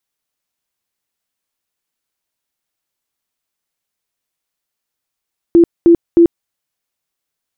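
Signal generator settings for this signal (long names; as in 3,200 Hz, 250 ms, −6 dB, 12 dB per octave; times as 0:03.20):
tone bursts 339 Hz, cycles 30, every 0.31 s, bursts 3, −3.5 dBFS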